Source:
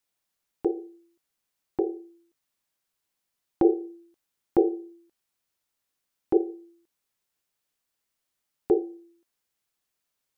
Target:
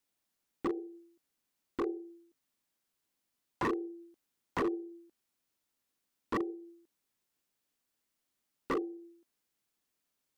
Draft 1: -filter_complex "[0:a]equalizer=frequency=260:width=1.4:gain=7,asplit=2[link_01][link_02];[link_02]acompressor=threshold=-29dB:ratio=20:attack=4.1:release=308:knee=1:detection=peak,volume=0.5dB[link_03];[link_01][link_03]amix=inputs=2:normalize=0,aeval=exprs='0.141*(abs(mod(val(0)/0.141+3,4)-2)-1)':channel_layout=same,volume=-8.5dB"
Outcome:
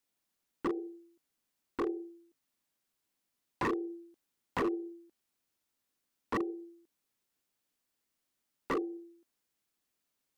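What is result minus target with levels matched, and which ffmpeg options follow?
downward compressor: peak gain reduction −8 dB
-filter_complex "[0:a]equalizer=frequency=260:width=1.4:gain=7,asplit=2[link_01][link_02];[link_02]acompressor=threshold=-37.5dB:ratio=20:attack=4.1:release=308:knee=1:detection=peak,volume=0.5dB[link_03];[link_01][link_03]amix=inputs=2:normalize=0,aeval=exprs='0.141*(abs(mod(val(0)/0.141+3,4)-2)-1)':channel_layout=same,volume=-8.5dB"

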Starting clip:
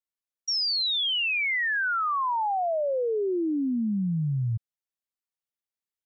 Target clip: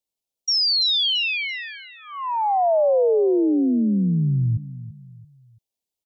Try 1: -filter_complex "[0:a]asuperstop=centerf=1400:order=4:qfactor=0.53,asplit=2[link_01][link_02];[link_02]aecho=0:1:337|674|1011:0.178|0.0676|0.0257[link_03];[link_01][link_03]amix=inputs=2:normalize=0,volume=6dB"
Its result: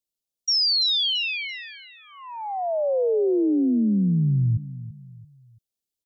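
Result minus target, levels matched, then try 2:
1,000 Hz band −7.5 dB
-filter_complex "[0:a]asuperstop=centerf=1400:order=4:qfactor=0.53,equalizer=frequency=1100:width=0.88:gain=13,asplit=2[link_01][link_02];[link_02]aecho=0:1:337|674|1011:0.178|0.0676|0.0257[link_03];[link_01][link_03]amix=inputs=2:normalize=0,volume=6dB"

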